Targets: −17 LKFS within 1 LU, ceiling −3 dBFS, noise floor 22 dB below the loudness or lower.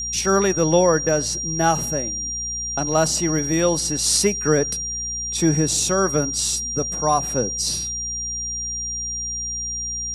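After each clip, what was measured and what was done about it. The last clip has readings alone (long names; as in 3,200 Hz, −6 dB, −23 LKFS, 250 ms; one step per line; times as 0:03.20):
mains hum 60 Hz; hum harmonics up to 240 Hz; level of the hum −36 dBFS; interfering tone 5,700 Hz; level of the tone −25 dBFS; integrated loudness −20.5 LKFS; sample peak −4.0 dBFS; target loudness −17.0 LKFS
→ hum removal 60 Hz, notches 4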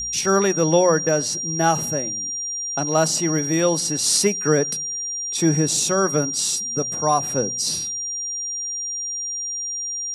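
mains hum none found; interfering tone 5,700 Hz; level of the tone −25 dBFS
→ notch filter 5,700 Hz, Q 30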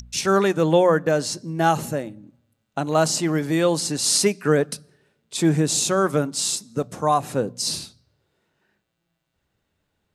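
interfering tone none found; integrated loudness −21.5 LKFS; sample peak −5.0 dBFS; target loudness −17.0 LKFS
→ level +4.5 dB
brickwall limiter −3 dBFS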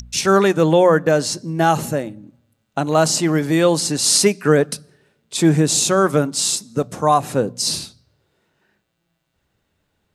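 integrated loudness −17.0 LKFS; sample peak −3.0 dBFS; background noise floor −71 dBFS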